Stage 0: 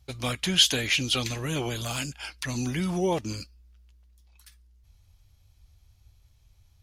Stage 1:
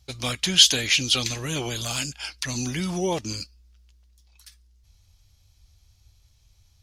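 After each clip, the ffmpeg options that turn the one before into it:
-af "equalizer=f=5.4k:w=0.79:g=8"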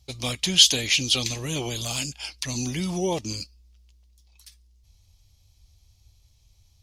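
-af "equalizer=f=1.5k:w=2.2:g=-9"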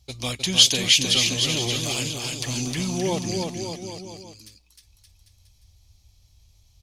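-af "aecho=1:1:310|573.5|797.5|987.9|1150:0.631|0.398|0.251|0.158|0.1"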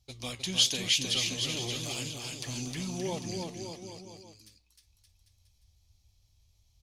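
-af "flanger=delay=7:depth=9.4:regen=-75:speed=0.96:shape=triangular,volume=-5dB"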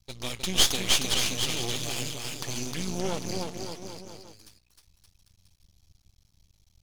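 -af "aeval=exprs='max(val(0),0)':c=same,volume=7.5dB"

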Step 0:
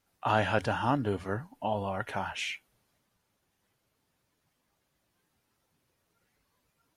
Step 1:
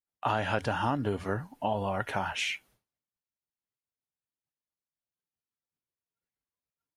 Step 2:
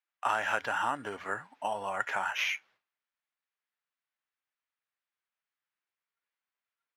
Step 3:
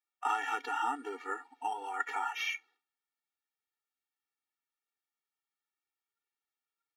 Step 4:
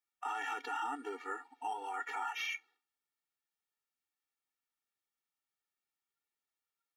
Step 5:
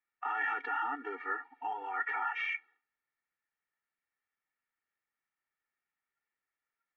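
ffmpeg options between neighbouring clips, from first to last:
-af "agate=range=-33dB:threshold=-58dB:ratio=3:detection=peak,acompressor=threshold=-28dB:ratio=6,volume=3.5dB"
-af "acrusher=samples=5:mix=1:aa=0.000001,bandpass=f=1.7k:t=q:w=1.1:csg=0,volume=4.5dB"
-af "afftfilt=real='re*eq(mod(floor(b*sr/1024/240),2),1)':imag='im*eq(mod(floor(b*sr/1024/240),2),1)':win_size=1024:overlap=0.75"
-af "alimiter=level_in=4dB:limit=-24dB:level=0:latency=1:release=10,volume=-4dB,volume=-1.5dB"
-af "lowpass=f=1.9k:t=q:w=2.9"

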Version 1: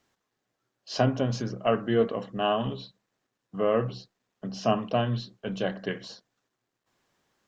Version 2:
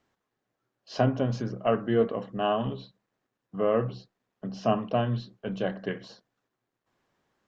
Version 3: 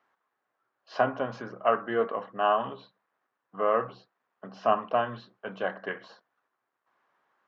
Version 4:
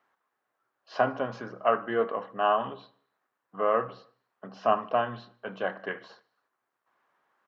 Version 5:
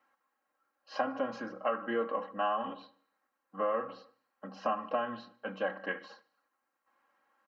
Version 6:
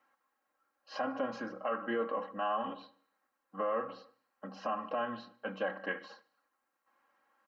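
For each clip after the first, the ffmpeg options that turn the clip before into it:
-af "highshelf=f=3.5k:g=-10.5"
-af "bandpass=f=1.2k:t=q:w=1.4:csg=0,volume=7.5dB"
-af "aecho=1:1:75|150|225|300:0.0631|0.0372|0.022|0.013"
-af "bandreject=f=3.5k:w=14,aecho=1:1:3.7:0.9,acompressor=threshold=-24dB:ratio=6,volume=-3.5dB"
-af "alimiter=level_in=0.5dB:limit=-24dB:level=0:latency=1:release=16,volume=-0.5dB"

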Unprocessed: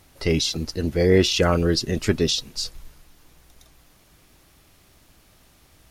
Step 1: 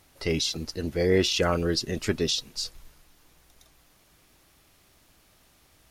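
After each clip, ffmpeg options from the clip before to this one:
-af "lowshelf=f=280:g=-4.5,volume=-3.5dB"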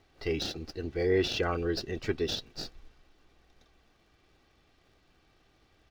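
-filter_complex "[0:a]aecho=1:1:2.6:0.49,acrossover=split=5400[a][b];[b]acrusher=samples=41:mix=1:aa=0.000001[c];[a][c]amix=inputs=2:normalize=0,volume=-6dB"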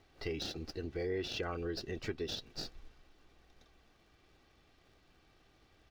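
-af "acompressor=threshold=-37dB:ratio=2.5,volume=-1dB"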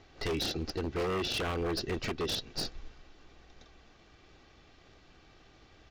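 -af "aresample=16000,aresample=44100,aeval=exprs='0.0188*(abs(mod(val(0)/0.0188+3,4)-2)-1)':c=same,volume=8dB"

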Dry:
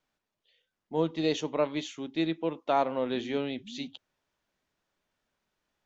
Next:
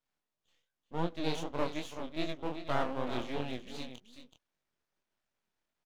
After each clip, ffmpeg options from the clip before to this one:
-af "aecho=1:1:378:0.316,aeval=exprs='max(val(0),0)':c=same,flanger=delay=20:depth=7.4:speed=2.6"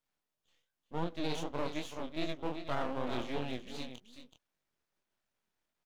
-af "alimiter=limit=-22.5dB:level=0:latency=1:release=28"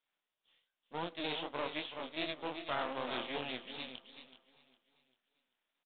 -af "aemphasis=mode=production:type=riaa,aresample=8000,acrusher=bits=3:mode=log:mix=0:aa=0.000001,aresample=44100,aecho=1:1:393|786|1179|1572:0.112|0.0505|0.0227|0.0102"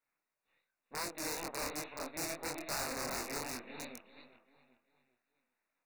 -af "aeval=exprs='(mod(33.5*val(0)+1,2)-1)/33.5':c=same,flanger=delay=20:depth=7.9:speed=2.8,asuperstop=centerf=3200:order=4:qfactor=2.2,volume=4.5dB"

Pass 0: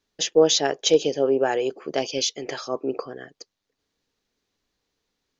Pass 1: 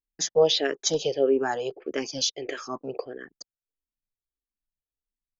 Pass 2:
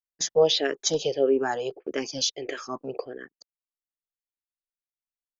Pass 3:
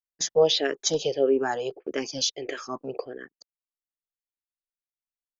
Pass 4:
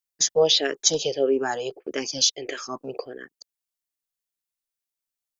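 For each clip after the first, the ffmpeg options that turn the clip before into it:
-filter_complex "[0:a]anlmdn=0.1,asplit=2[a][b];[b]afreqshift=-1.6[c];[a][c]amix=inputs=2:normalize=1"
-af "agate=range=-20dB:threshold=-40dB:ratio=16:detection=peak"
-af anull
-af "highshelf=f=3.5k:g=9"

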